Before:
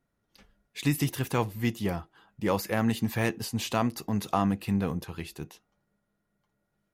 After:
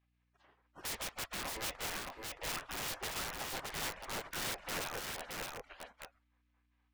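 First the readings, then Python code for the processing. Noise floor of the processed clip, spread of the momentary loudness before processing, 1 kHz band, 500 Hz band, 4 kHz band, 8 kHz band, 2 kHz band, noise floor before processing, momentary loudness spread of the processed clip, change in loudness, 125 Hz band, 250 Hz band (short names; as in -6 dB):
-77 dBFS, 12 LU, -10.0 dB, -13.5 dB, -1.5 dB, -0.5 dB, -4.5 dB, -79 dBFS, 9 LU, -10.0 dB, -22.5 dB, -23.0 dB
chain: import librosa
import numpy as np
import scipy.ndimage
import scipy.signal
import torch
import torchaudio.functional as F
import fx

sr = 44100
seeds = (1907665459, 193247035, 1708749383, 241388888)

p1 = fx.spec_gate(x, sr, threshold_db=-25, keep='weak')
p2 = scipy.signal.sosfilt(scipy.signal.butter(2, 1700.0, 'lowpass', fs=sr, output='sos'), p1)
p3 = (np.mod(10.0 ** (48.0 / 20.0) * p2 + 1.0, 2.0) - 1.0) / 10.0 ** (48.0 / 20.0)
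p4 = fx.add_hum(p3, sr, base_hz=60, snr_db=34)
p5 = p4 + fx.echo_single(p4, sr, ms=620, db=-3.5, dry=0)
y = F.gain(torch.from_numpy(p5), 14.0).numpy()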